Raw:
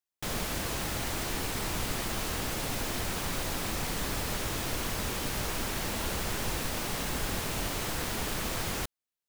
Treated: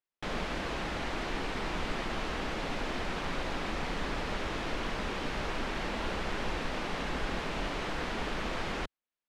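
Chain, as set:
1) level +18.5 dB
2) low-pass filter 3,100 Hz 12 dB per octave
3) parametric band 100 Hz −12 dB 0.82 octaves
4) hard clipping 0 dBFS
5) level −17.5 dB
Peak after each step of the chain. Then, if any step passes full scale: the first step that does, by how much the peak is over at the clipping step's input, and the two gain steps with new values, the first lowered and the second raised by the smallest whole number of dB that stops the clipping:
−0.5, −2.5, −3.5, −3.5, −21.0 dBFS
no step passes full scale

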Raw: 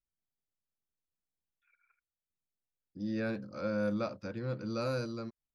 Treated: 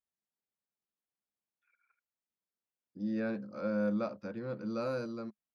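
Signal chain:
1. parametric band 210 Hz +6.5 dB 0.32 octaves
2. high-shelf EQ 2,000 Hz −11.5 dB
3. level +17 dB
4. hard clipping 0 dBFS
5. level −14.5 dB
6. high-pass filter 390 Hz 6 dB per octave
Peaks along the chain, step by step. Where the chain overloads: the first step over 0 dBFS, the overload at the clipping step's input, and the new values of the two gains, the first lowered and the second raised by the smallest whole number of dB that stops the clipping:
−20.5, −21.0, −4.0, −4.0, −18.5, −22.5 dBFS
no step passes full scale

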